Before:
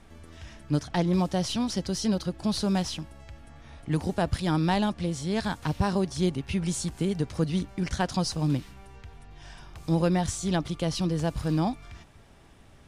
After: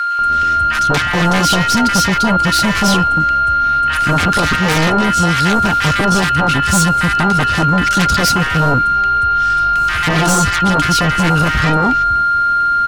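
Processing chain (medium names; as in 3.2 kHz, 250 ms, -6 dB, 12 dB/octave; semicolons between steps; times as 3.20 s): whistle 1.4 kHz -29 dBFS; sine folder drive 13 dB, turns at -11.5 dBFS; bands offset in time highs, lows 190 ms, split 1.2 kHz; trim +2.5 dB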